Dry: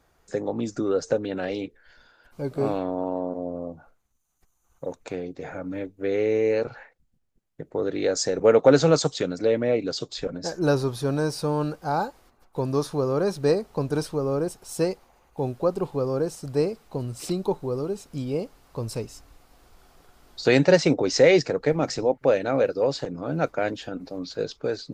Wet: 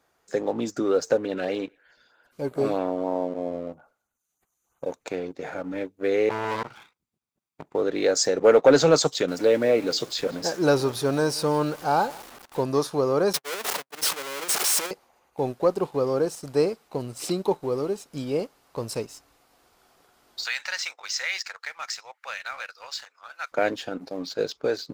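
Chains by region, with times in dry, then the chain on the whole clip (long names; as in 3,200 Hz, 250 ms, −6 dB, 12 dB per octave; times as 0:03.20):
0:01.14–0:04.89: auto-filter notch sine 3.1 Hz 770–5,600 Hz + feedback echo with a band-pass in the loop 99 ms, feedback 45%, band-pass 1,600 Hz, level −19 dB
0:06.29–0:07.75: lower of the sound and its delayed copy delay 0.83 ms + high-pass filter 67 Hz 6 dB per octave + saturating transformer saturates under 800 Hz
0:09.28–0:12.64: converter with a step at zero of −39 dBFS + single-tap delay 174 ms −21.5 dB
0:13.33–0:14.91: sign of each sample alone + high-pass filter 710 Hz 6 dB per octave + noise gate −30 dBFS, range −59 dB
0:20.44–0:23.52: high-pass filter 1,200 Hz 24 dB per octave + downward compressor 2 to 1, threshold −32 dBFS
whole clip: high-pass filter 320 Hz 6 dB per octave; leveller curve on the samples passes 1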